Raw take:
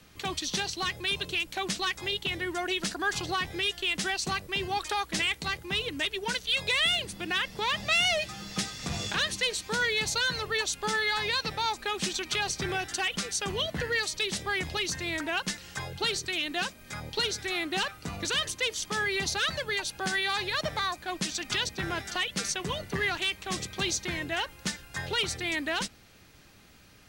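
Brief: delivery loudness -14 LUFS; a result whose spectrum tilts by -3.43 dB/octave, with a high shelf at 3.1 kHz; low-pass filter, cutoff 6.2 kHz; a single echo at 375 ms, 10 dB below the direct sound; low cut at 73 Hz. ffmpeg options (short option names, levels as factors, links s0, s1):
-af "highpass=73,lowpass=6200,highshelf=f=3100:g=-8.5,aecho=1:1:375:0.316,volume=7.94"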